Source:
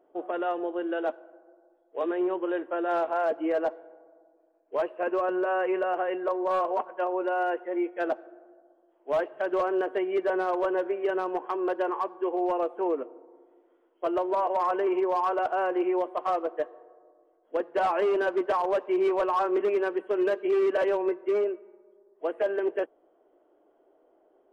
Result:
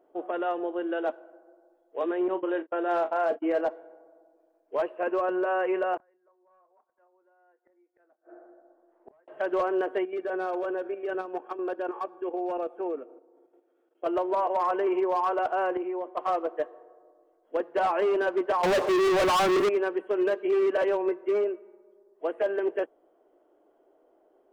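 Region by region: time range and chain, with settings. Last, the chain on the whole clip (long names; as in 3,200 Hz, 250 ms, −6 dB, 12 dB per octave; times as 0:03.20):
0:02.28–0:03.61: noise gate −33 dBFS, range −33 dB + double-tracking delay 37 ms −12 dB
0:05.97–0:09.28: high shelf with overshoot 2,500 Hz −12.5 dB, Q 1.5 + gate with flip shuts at −34 dBFS, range −39 dB + double-tracking delay 28 ms −14 dB
0:10.05–0:14.06: notch comb filter 1,000 Hz + output level in coarse steps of 10 dB
0:15.77–0:16.17: high-shelf EQ 3,100 Hz −9.5 dB + downward compressor 2.5 to 1, threshold −31 dBFS + multiband upward and downward expander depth 100%
0:18.63–0:19.69: notch filter 960 Hz, Q 14 + downward compressor 1.5 to 1, threshold −29 dBFS + leveller curve on the samples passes 5
whole clip: no processing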